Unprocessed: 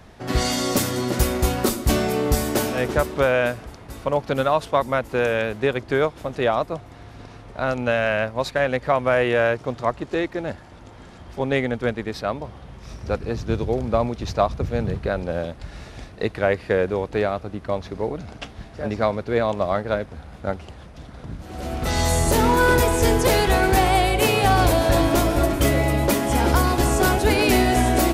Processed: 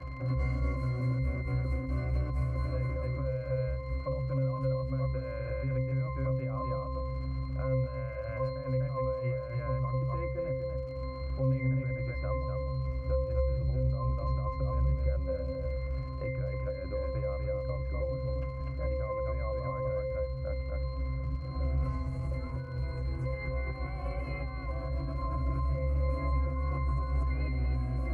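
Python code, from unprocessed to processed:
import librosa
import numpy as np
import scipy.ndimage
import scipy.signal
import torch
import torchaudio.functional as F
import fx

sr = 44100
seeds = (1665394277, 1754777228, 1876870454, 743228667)

y = fx.graphic_eq_15(x, sr, hz=(100, 250, 1600, 4000, 10000), db=(6, -9, 9, -10, 10))
y = y + 10.0 ** (-6.0 / 20.0) * np.pad(y, (int(247 * sr / 1000.0), 0))[:len(y)]
y = fx.over_compress(y, sr, threshold_db=-22.0, ratio=-1.0)
y = fx.dmg_crackle(y, sr, seeds[0], per_s=140.0, level_db=-18.0)
y = fx.octave_resonator(y, sr, note='C', decay_s=0.78)
y = fx.band_squash(y, sr, depth_pct=70)
y = y * 10.0 ** (7.5 / 20.0)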